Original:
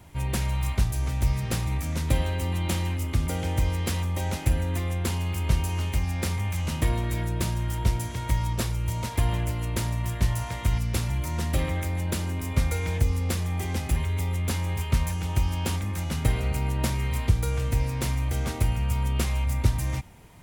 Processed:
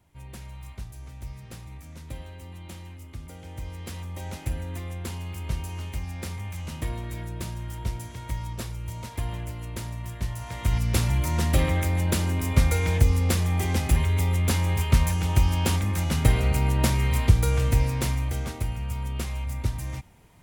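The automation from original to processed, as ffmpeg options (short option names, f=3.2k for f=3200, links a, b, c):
-af "volume=4dB,afade=t=in:st=3.41:d=0.96:silence=0.398107,afade=t=in:st=10.39:d=0.6:silence=0.298538,afade=t=out:st=17.68:d=0.91:silence=0.354813"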